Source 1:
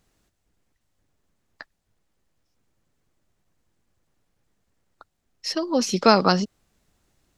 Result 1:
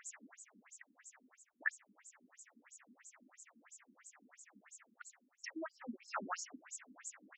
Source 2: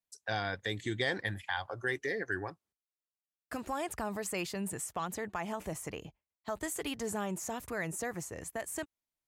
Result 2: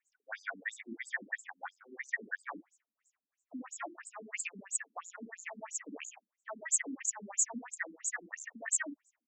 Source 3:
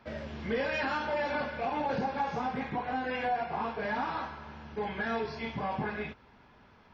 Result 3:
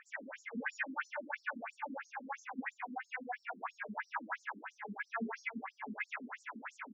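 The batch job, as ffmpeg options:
-af "firequalizer=gain_entry='entry(120,0);entry(250,8);entry(360,-10);entry(690,1);entry(1900,8);entry(4200,-29);entry(6900,5)':delay=0.05:min_phase=1,areverse,acompressor=threshold=0.00316:ratio=8,areverse,crystalizer=i=6.5:c=0,aecho=1:1:52.48|87.46:0.891|0.501,afftfilt=real='re*between(b*sr/1024,270*pow(6000/270,0.5+0.5*sin(2*PI*3*pts/sr))/1.41,270*pow(6000/270,0.5+0.5*sin(2*PI*3*pts/sr))*1.41)':imag='im*between(b*sr/1024,270*pow(6000/270,0.5+0.5*sin(2*PI*3*pts/sr))/1.41,270*pow(6000/270,0.5+0.5*sin(2*PI*3*pts/sr))*1.41)':win_size=1024:overlap=0.75,volume=3.76"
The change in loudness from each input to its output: -26.0 LU, -1.0 LU, -9.0 LU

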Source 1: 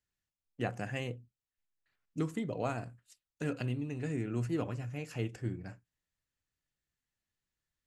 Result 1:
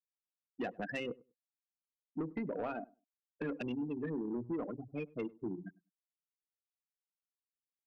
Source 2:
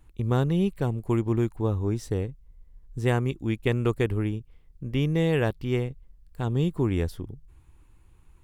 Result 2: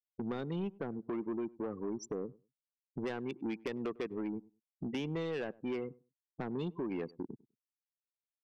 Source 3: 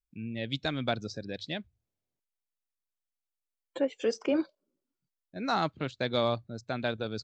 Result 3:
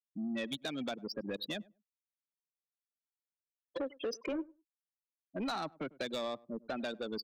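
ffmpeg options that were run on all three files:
-filter_complex "[0:a]highpass=f=190:w=0.5412,highpass=f=190:w=1.3066,afftfilt=real='re*gte(hypot(re,im),0.0224)':imag='im*gte(hypot(re,im),0.0224)':win_size=1024:overlap=0.75,highshelf=f=3700:g=10,acompressor=threshold=0.0141:ratio=5,asoftclip=type=tanh:threshold=0.0158,asplit=2[s0][s1];[s1]adelay=100,lowpass=f=900:p=1,volume=0.0841,asplit=2[s2][s3];[s3]adelay=100,lowpass=f=900:p=1,volume=0.18[s4];[s0][s2][s4]amix=inputs=3:normalize=0,adynamicequalizer=threshold=0.00141:dfrequency=2300:dqfactor=0.7:tfrequency=2300:tqfactor=0.7:attack=5:release=100:ratio=0.375:range=1.5:mode=cutabove:tftype=highshelf,volume=1.88"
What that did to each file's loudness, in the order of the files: -3.0 LU, -12.5 LU, -7.0 LU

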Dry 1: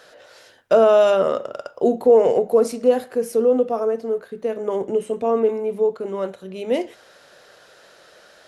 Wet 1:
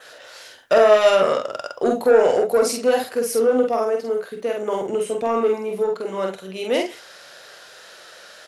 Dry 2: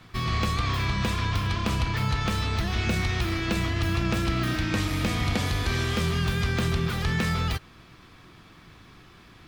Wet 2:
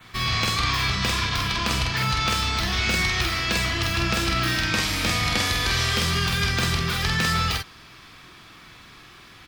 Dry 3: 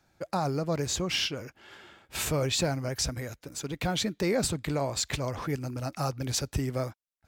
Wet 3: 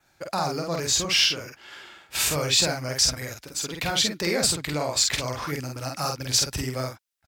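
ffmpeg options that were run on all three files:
-filter_complex "[0:a]adynamicequalizer=threshold=0.00355:dfrequency=5000:dqfactor=3.4:tfrequency=5000:tqfactor=3.4:attack=5:release=100:ratio=0.375:range=2:mode=boostabove:tftype=bell,asoftclip=type=tanh:threshold=0.376,tiltshelf=f=820:g=-5,asplit=2[s0][s1];[s1]adelay=47,volume=0.708[s2];[s0][s2]amix=inputs=2:normalize=0,volume=1.26"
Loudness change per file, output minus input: 0.0 LU, +4.0 LU, +6.5 LU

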